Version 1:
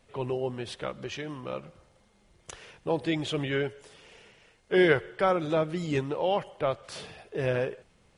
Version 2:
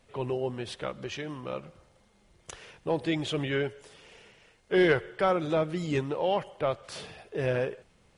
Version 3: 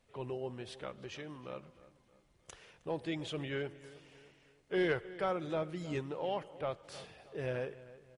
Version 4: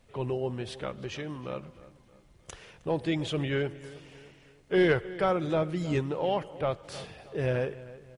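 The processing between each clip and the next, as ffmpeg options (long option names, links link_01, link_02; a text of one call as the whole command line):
ffmpeg -i in.wav -af "asoftclip=type=tanh:threshold=-12.5dB" out.wav
ffmpeg -i in.wav -filter_complex "[0:a]asplit=2[link_01][link_02];[link_02]adelay=313,lowpass=frequency=3200:poles=1,volume=-17dB,asplit=2[link_03][link_04];[link_04]adelay=313,lowpass=frequency=3200:poles=1,volume=0.44,asplit=2[link_05][link_06];[link_06]adelay=313,lowpass=frequency=3200:poles=1,volume=0.44,asplit=2[link_07][link_08];[link_08]adelay=313,lowpass=frequency=3200:poles=1,volume=0.44[link_09];[link_01][link_03][link_05][link_07][link_09]amix=inputs=5:normalize=0,volume=-9dB" out.wav
ffmpeg -i in.wav -af "lowshelf=frequency=210:gain=6,volume=7dB" out.wav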